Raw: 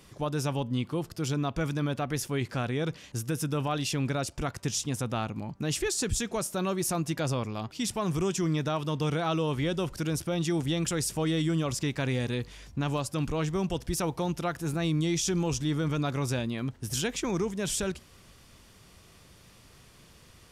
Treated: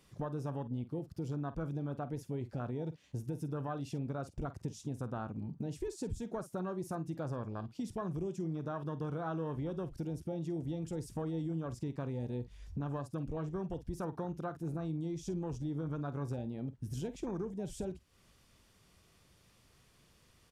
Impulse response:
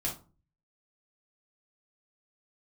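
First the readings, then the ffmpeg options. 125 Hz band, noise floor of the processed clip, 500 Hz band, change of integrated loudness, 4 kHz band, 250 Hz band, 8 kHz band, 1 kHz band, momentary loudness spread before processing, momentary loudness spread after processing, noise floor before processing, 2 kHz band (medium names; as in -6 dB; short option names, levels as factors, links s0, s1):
-8.0 dB, -67 dBFS, -8.5 dB, -9.5 dB, -23.0 dB, -8.5 dB, -22.0 dB, -10.0 dB, 5 LU, 4 LU, -56 dBFS, -17.0 dB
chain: -filter_complex "[0:a]afwtdn=0.0224,acompressor=threshold=0.00501:ratio=3,asplit=2[s0][s1];[s1]adelay=49,volume=0.2[s2];[s0][s2]amix=inputs=2:normalize=0,volume=1.88"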